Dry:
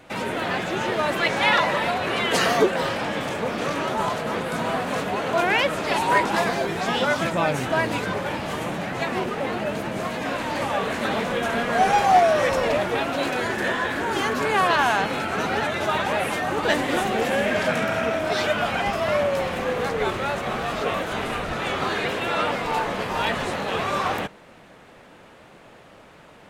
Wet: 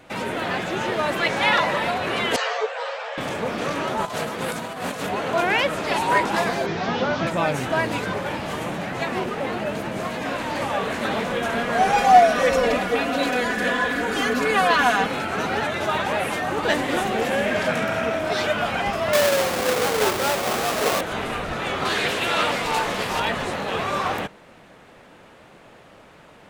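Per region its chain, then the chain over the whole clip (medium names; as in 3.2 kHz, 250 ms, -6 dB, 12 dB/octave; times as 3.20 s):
2.36–3.18 s: brick-wall FIR band-pass 430–8500 Hz + distance through air 76 m + three-phase chorus
4.05–5.09 s: high-pass 50 Hz + treble shelf 4.9 kHz +9 dB + compressor with a negative ratio -28 dBFS, ratio -0.5
6.66–7.27 s: one-bit delta coder 32 kbps, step -35 dBFS + high-pass 79 Hz + bass shelf 140 Hz +5.5 dB
11.96–15.07 s: band-stop 900 Hz, Q 7.2 + comb 4.1 ms, depth 78%
19.13–21.01 s: square wave that keeps the level + high-pass 49 Hz + tone controls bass -9 dB, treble +1 dB
21.85–23.20 s: treble shelf 3 kHz +11 dB + loudspeaker Doppler distortion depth 0.13 ms
whole clip: none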